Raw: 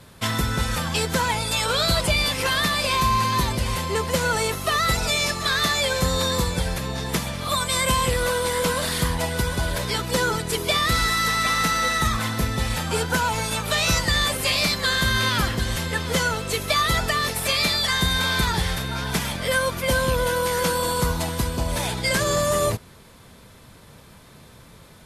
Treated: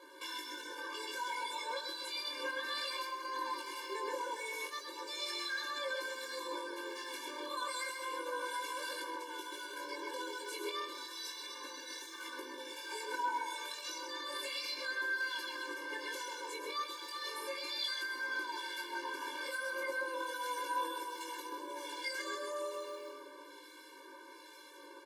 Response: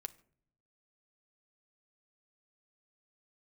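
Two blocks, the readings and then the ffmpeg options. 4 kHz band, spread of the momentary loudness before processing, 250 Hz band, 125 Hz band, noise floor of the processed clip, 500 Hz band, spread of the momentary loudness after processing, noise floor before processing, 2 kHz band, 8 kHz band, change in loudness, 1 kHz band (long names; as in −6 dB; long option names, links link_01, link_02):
−17.5 dB, 6 LU, −22.0 dB, below −40 dB, −54 dBFS, −17.5 dB, 8 LU, −48 dBFS, −15.0 dB, −20.5 dB, −17.5 dB, −15.0 dB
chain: -filter_complex "[0:a]aecho=1:1:3.2:0.72,asplit=2[link_01][link_02];[link_02]adelay=129,lowpass=frequency=3700:poles=1,volume=-3.5dB,asplit=2[link_03][link_04];[link_04]adelay=129,lowpass=frequency=3700:poles=1,volume=0.49,asplit=2[link_05][link_06];[link_06]adelay=129,lowpass=frequency=3700:poles=1,volume=0.49,asplit=2[link_07][link_08];[link_08]adelay=129,lowpass=frequency=3700:poles=1,volume=0.49,asplit=2[link_09][link_10];[link_10]adelay=129,lowpass=frequency=3700:poles=1,volume=0.49,asplit=2[link_11][link_12];[link_12]adelay=129,lowpass=frequency=3700:poles=1,volume=0.49[link_13];[link_03][link_05][link_07][link_09][link_11][link_13]amix=inputs=6:normalize=0[link_14];[link_01][link_14]amix=inputs=2:normalize=0,acompressor=threshold=-22dB:ratio=6,bandreject=frequency=53.28:width_type=h:width=4,bandreject=frequency=106.56:width_type=h:width=4,bandreject=frequency=159.84:width_type=h:width=4,bandreject=frequency=213.12:width_type=h:width=4,bandreject=frequency=266.4:width_type=h:width=4,bandreject=frequency=319.68:width_type=h:width=4,bandreject=frequency=372.96:width_type=h:width=4,alimiter=limit=-24dB:level=0:latency=1:release=240,areverse,acompressor=mode=upward:threshold=-45dB:ratio=2.5,areverse,highshelf=frequency=6100:gain=-7,acrusher=bits=9:mode=log:mix=0:aa=0.000001,lowshelf=frequency=220:gain=-8,acrossover=split=1600[link_15][link_16];[link_15]aeval=exprs='val(0)*(1-0.5/2+0.5/2*cos(2*PI*1.2*n/s))':channel_layout=same[link_17];[link_16]aeval=exprs='val(0)*(1-0.5/2-0.5/2*cos(2*PI*1.2*n/s))':channel_layout=same[link_18];[link_17][link_18]amix=inputs=2:normalize=0,flanger=delay=18.5:depth=3.6:speed=0.33,afftfilt=real='re*eq(mod(floor(b*sr/1024/300),2),1)':imag='im*eq(mod(floor(b*sr/1024/300),2),1)':win_size=1024:overlap=0.75,volume=3dB"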